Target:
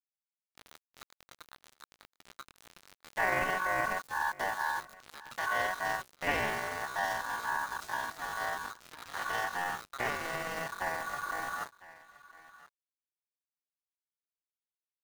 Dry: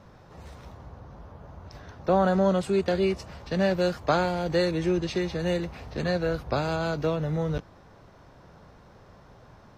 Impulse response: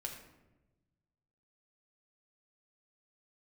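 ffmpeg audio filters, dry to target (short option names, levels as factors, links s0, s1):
-filter_complex "[0:a]highshelf=f=6100:g=-9,asplit=4[s0][s1][s2][s3];[s1]asetrate=35002,aresample=44100,atempo=1.25992,volume=0.501[s4];[s2]asetrate=52444,aresample=44100,atempo=0.840896,volume=0.631[s5];[s3]asetrate=58866,aresample=44100,atempo=0.749154,volume=0.224[s6];[s0][s4][s5][s6]amix=inputs=4:normalize=0,asplit=2[s7][s8];[s8]acompressor=threshold=0.02:ratio=5,volume=0.841[s9];[s7][s9]amix=inputs=2:normalize=0,aeval=exprs='val(0)*sin(2*PI*1300*n/s)':c=same,aeval=exprs='val(0)*gte(abs(val(0)),0.0316)':c=same,aecho=1:1:659:0.0841,atempo=0.65,adynamicequalizer=threshold=0.0126:dfrequency=2500:dqfactor=0.76:tfrequency=2500:tqfactor=0.76:attack=5:release=100:ratio=0.375:range=3:mode=cutabove:tftype=bell,volume=0.422"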